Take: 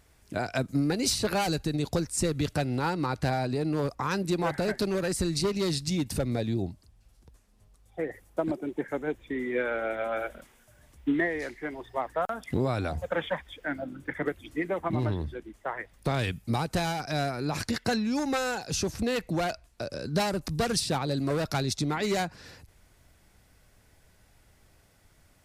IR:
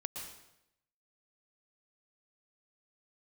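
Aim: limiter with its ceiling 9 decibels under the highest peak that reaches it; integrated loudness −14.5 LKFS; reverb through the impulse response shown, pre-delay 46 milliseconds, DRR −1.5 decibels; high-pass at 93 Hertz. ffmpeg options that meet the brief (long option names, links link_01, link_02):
-filter_complex "[0:a]highpass=93,alimiter=limit=-23dB:level=0:latency=1,asplit=2[link_01][link_02];[1:a]atrim=start_sample=2205,adelay=46[link_03];[link_02][link_03]afir=irnorm=-1:irlink=0,volume=2dB[link_04];[link_01][link_04]amix=inputs=2:normalize=0,volume=14.5dB"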